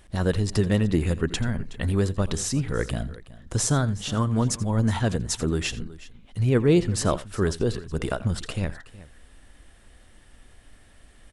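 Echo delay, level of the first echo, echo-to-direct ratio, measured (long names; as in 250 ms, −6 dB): 84 ms, −18.0 dB, −15.0 dB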